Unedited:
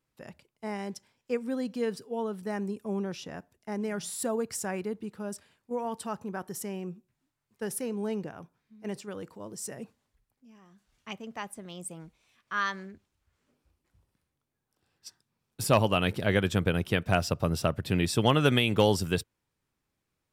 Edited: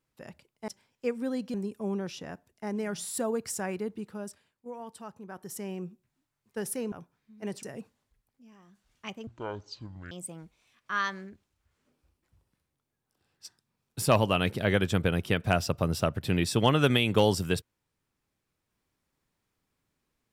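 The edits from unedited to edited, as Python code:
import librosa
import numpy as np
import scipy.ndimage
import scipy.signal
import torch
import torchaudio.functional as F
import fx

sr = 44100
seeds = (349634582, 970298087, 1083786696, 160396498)

y = fx.edit(x, sr, fx.cut(start_s=0.68, length_s=0.26),
    fx.cut(start_s=1.8, length_s=0.79),
    fx.fade_down_up(start_s=5.1, length_s=1.68, db=-8.5, fade_s=0.47),
    fx.cut(start_s=7.97, length_s=0.37),
    fx.cut(start_s=9.05, length_s=0.61),
    fx.speed_span(start_s=11.3, length_s=0.43, speed=0.51), tone=tone)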